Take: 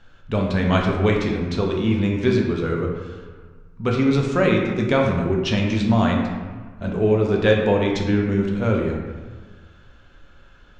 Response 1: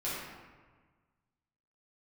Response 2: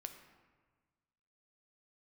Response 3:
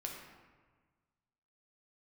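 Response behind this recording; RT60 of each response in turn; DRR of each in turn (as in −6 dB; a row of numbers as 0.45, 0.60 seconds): 3; 1.4, 1.4, 1.4 seconds; −10.5, 6.0, −0.5 decibels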